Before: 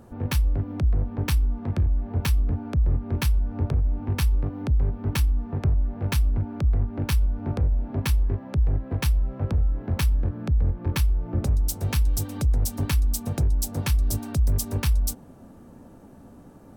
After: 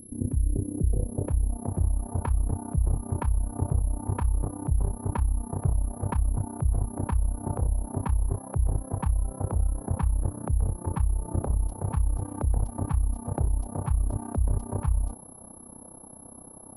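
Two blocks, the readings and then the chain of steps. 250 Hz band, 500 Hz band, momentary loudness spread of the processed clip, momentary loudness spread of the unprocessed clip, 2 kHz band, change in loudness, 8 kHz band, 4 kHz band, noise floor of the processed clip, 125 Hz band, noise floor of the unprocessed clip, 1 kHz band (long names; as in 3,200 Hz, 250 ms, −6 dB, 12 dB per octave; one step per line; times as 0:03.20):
−2.5 dB, −1.0 dB, 3 LU, 2 LU, −13.0 dB, −3.5 dB, −5.0 dB, below −25 dB, −47 dBFS, −3.0 dB, −48 dBFS, +2.0 dB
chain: low-pass filter sweep 300 Hz → 940 Hz, 0:00.33–0:01.91
steady tone 11,000 Hz −43 dBFS
amplitude modulation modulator 32 Hz, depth 70%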